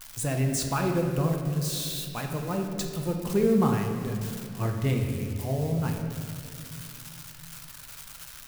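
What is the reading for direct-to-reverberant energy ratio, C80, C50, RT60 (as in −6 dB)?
2.0 dB, 5.0 dB, 4.0 dB, 2.4 s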